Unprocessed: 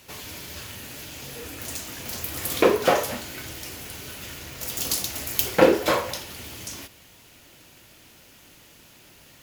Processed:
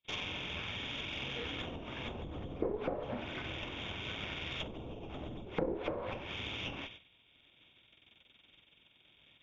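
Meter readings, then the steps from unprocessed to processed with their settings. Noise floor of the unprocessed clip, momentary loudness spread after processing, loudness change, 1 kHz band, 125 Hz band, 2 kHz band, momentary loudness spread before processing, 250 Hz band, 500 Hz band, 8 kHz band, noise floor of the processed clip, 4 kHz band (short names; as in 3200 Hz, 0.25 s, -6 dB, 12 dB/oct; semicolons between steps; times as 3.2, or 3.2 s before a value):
-52 dBFS, 8 LU, -13.5 dB, -15.5 dB, -6.0 dB, -9.5 dB, 18 LU, -12.0 dB, -15.5 dB, -30.0 dB, -68 dBFS, -7.5 dB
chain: nonlinear frequency compression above 2100 Hz 4:1; gate -45 dBFS, range -40 dB; compressor 12:1, threshold -25 dBFS, peak gain reduction 16 dB; added harmonics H 8 -19 dB, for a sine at -13.5 dBFS; treble ducked by the level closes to 540 Hz, closed at -24.5 dBFS; gain -3.5 dB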